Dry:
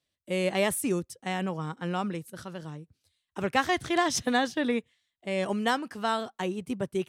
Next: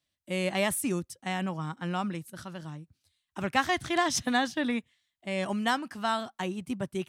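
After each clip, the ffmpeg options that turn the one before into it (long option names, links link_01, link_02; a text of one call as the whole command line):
ffmpeg -i in.wav -af "equalizer=frequency=450:width=3.4:gain=-10.5" out.wav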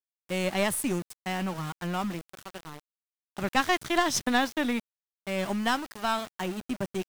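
ffmpeg -i in.wav -af "aeval=exprs='(tanh(5.01*val(0)+0.75)-tanh(0.75))/5.01':channel_layout=same,aeval=exprs='val(0)*gte(abs(val(0)),0.00841)':channel_layout=same,volume=5.5dB" out.wav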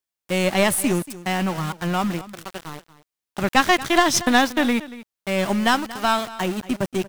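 ffmpeg -i in.wav -af "aecho=1:1:233:0.141,volume=8dB" out.wav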